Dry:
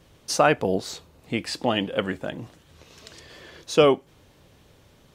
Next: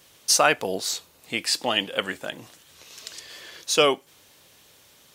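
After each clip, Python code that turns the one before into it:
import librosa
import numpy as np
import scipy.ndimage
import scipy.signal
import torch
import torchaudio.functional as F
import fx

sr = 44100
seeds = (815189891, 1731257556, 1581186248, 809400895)

y = fx.tilt_eq(x, sr, slope=3.5)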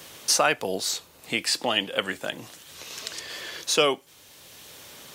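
y = fx.band_squash(x, sr, depth_pct=40)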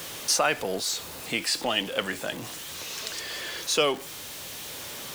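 y = x + 0.5 * 10.0 ** (-32.0 / 20.0) * np.sign(x)
y = y * 10.0 ** (-3.0 / 20.0)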